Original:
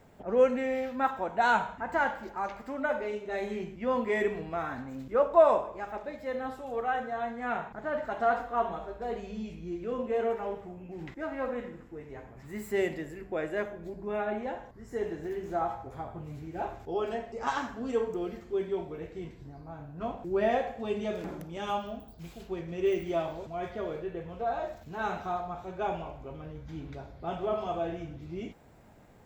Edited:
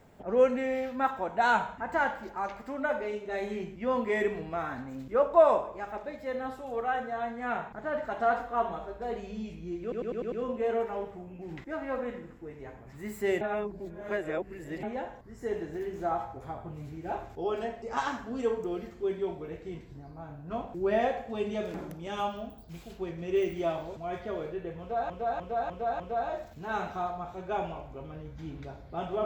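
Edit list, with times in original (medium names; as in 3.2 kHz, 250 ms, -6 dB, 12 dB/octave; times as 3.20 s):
9.82 s: stutter 0.10 s, 6 plays
12.91–14.33 s: reverse
24.30–24.60 s: loop, 5 plays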